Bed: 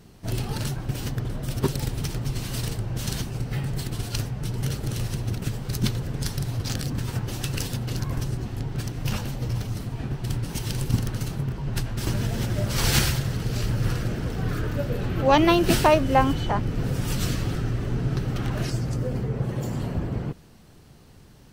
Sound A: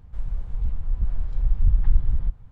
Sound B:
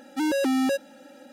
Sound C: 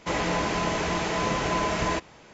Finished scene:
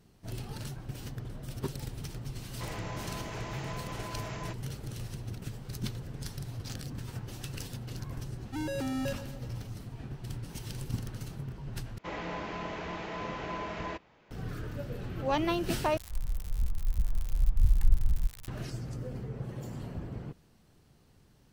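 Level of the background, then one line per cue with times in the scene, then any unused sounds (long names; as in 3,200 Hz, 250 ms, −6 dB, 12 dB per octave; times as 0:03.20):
bed −11.5 dB
0:02.54: mix in C −12 dB + brickwall limiter −20 dBFS
0:08.36: mix in B −11 dB + feedback echo at a low word length 123 ms, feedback 55%, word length 9 bits, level −14 dB
0:11.98: overwrite with C −11 dB + low-pass filter 3,600 Hz
0:15.97: overwrite with A −5 dB + spike at every zero crossing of −22 dBFS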